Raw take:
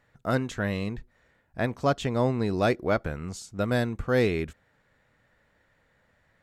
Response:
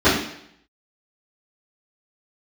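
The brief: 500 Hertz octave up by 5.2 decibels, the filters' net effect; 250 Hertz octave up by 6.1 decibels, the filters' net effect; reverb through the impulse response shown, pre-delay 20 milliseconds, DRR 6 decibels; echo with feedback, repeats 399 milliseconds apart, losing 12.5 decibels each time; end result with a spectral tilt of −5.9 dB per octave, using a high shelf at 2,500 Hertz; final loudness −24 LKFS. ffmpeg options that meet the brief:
-filter_complex "[0:a]equalizer=frequency=250:width_type=o:gain=6,equalizer=frequency=500:width_type=o:gain=5,highshelf=frequency=2500:gain=-6,aecho=1:1:399|798|1197:0.237|0.0569|0.0137,asplit=2[link_01][link_02];[1:a]atrim=start_sample=2205,adelay=20[link_03];[link_02][link_03]afir=irnorm=-1:irlink=0,volume=-30dB[link_04];[link_01][link_04]amix=inputs=2:normalize=0,volume=-2.5dB"

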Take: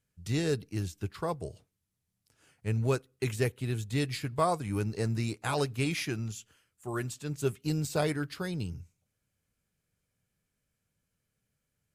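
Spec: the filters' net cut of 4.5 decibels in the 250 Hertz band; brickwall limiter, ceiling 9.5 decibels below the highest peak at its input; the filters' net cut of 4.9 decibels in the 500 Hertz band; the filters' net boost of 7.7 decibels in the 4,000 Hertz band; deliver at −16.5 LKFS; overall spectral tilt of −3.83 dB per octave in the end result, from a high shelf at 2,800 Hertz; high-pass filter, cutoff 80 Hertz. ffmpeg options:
ffmpeg -i in.wav -af "highpass=80,equalizer=frequency=250:width_type=o:gain=-5,equalizer=frequency=500:width_type=o:gain=-5,highshelf=frequency=2800:gain=5.5,equalizer=frequency=4000:width_type=o:gain=5,volume=19dB,alimiter=limit=-3.5dB:level=0:latency=1" out.wav

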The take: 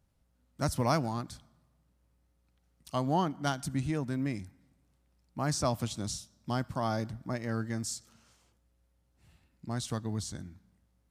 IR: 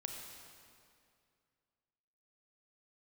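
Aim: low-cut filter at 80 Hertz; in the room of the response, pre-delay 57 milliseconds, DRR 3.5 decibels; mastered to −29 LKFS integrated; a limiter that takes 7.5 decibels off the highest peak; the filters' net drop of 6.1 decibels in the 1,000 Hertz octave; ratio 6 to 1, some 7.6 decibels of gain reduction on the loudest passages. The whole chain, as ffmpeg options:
-filter_complex "[0:a]highpass=80,equalizer=frequency=1000:width_type=o:gain=-8.5,acompressor=threshold=-34dB:ratio=6,alimiter=level_in=7dB:limit=-24dB:level=0:latency=1,volume=-7dB,asplit=2[link_01][link_02];[1:a]atrim=start_sample=2205,adelay=57[link_03];[link_02][link_03]afir=irnorm=-1:irlink=0,volume=-2dB[link_04];[link_01][link_04]amix=inputs=2:normalize=0,volume=12dB"

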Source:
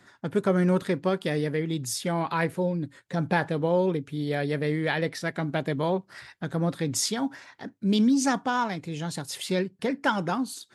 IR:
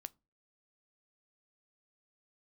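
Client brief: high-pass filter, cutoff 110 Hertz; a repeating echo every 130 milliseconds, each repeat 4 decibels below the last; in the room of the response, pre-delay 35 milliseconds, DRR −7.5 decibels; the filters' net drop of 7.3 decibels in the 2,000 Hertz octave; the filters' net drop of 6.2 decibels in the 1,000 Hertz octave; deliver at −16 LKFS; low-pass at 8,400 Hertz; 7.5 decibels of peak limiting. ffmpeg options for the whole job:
-filter_complex "[0:a]highpass=110,lowpass=8400,equalizer=frequency=1000:width_type=o:gain=-6.5,equalizer=frequency=2000:width_type=o:gain=-7,alimiter=limit=-19dB:level=0:latency=1,aecho=1:1:130|260|390|520|650|780|910|1040|1170:0.631|0.398|0.25|0.158|0.0994|0.0626|0.0394|0.0249|0.0157,asplit=2[link_01][link_02];[1:a]atrim=start_sample=2205,adelay=35[link_03];[link_02][link_03]afir=irnorm=-1:irlink=0,volume=12.5dB[link_04];[link_01][link_04]amix=inputs=2:normalize=0,volume=4dB"

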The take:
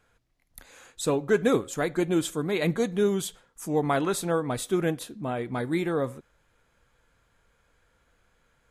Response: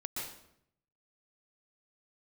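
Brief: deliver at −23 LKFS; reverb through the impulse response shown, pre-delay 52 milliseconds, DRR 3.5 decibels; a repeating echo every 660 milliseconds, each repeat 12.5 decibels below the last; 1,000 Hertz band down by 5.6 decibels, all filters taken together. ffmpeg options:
-filter_complex "[0:a]equalizer=frequency=1000:width_type=o:gain=-8.5,aecho=1:1:660|1320|1980:0.237|0.0569|0.0137,asplit=2[link_01][link_02];[1:a]atrim=start_sample=2205,adelay=52[link_03];[link_02][link_03]afir=irnorm=-1:irlink=0,volume=-5dB[link_04];[link_01][link_04]amix=inputs=2:normalize=0,volume=4dB"

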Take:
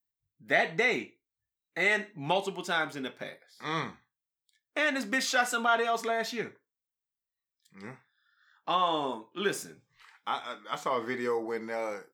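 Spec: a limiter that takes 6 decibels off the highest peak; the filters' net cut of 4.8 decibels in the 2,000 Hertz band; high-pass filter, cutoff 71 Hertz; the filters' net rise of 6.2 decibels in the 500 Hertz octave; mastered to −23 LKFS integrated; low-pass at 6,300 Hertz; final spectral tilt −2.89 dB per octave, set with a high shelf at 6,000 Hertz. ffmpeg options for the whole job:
ffmpeg -i in.wav -af "highpass=71,lowpass=6300,equalizer=frequency=500:width_type=o:gain=8,equalizer=frequency=2000:width_type=o:gain=-5.5,highshelf=frequency=6000:gain=-7.5,volume=7.5dB,alimiter=limit=-10dB:level=0:latency=1" out.wav

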